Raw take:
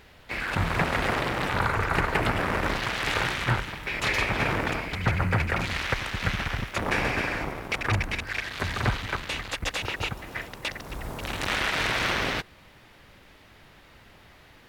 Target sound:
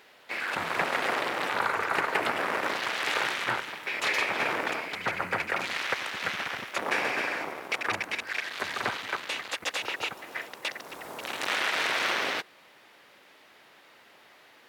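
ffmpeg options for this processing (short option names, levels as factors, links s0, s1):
-af "highpass=370,volume=0.891"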